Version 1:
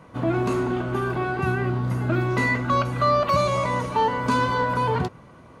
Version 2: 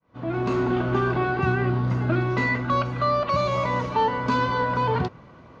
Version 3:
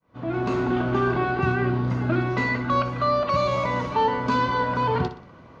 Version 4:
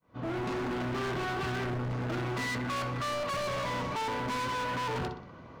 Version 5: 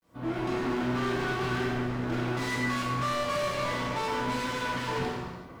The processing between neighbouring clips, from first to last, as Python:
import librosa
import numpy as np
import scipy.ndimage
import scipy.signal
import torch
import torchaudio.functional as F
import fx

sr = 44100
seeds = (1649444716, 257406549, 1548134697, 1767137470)

y1 = fx.fade_in_head(x, sr, length_s=0.93)
y1 = scipy.signal.sosfilt(scipy.signal.butter(4, 5600.0, 'lowpass', fs=sr, output='sos'), y1)
y1 = fx.rider(y1, sr, range_db=5, speed_s=0.5)
y2 = fx.echo_feedback(y1, sr, ms=61, feedback_pct=40, wet_db=-12.0)
y3 = np.clip(10.0 ** (30.0 / 20.0) * y2, -1.0, 1.0) / 10.0 ** (30.0 / 20.0)
y3 = y3 * 10.0 ** (-1.5 / 20.0)
y4 = fx.peak_eq(y3, sr, hz=230.0, db=2.0, octaves=0.77)
y4 = fx.quant_dither(y4, sr, seeds[0], bits=12, dither='none')
y4 = fx.rev_gated(y4, sr, seeds[1], gate_ms=420, shape='falling', drr_db=-3.5)
y4 = y4 * 10.0 ** (-2.5 / 20.0)